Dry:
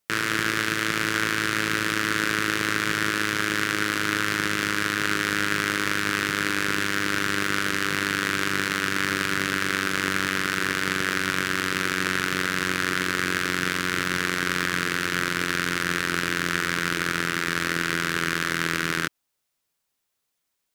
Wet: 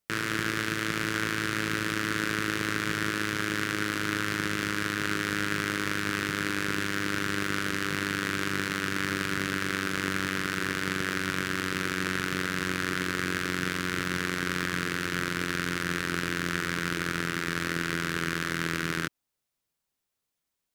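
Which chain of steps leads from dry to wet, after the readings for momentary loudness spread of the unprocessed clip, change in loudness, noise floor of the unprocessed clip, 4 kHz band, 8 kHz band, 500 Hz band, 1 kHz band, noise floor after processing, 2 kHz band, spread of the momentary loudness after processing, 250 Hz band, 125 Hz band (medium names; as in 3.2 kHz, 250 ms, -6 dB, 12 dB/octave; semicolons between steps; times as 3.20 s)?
1 LU, -5.0 dB, -78 dBFS, -6.0 dB, -6.0 dB, -3.5 dB, -5.5 dB, -84 dBFS, -5.5 dB, 1 LU, -2.0 dB, -1.0 dB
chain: bass shelf 370 Hz +6 dB; trim -6 dB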